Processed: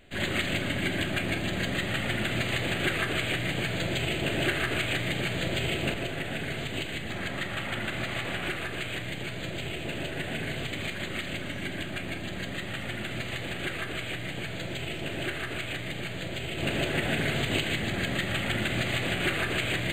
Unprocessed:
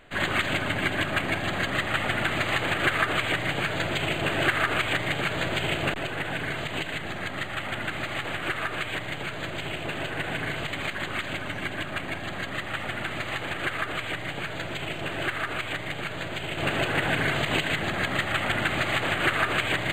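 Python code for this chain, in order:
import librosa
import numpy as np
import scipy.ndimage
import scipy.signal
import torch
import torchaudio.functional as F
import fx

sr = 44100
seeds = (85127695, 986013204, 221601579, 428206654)

y = fx.peak_eq(x, sr, hz=1100.0, db=fx.steps((0.0, -12.5), (7.1, -6.0), (8.48, -12.5)), octaves=1.4)
y = fx.rev_fdn(y, sr, rt60_s=1.9, lf_ratio=0.85, hf_ratio=0.6, size_ms=81.0, drr_db=4.5)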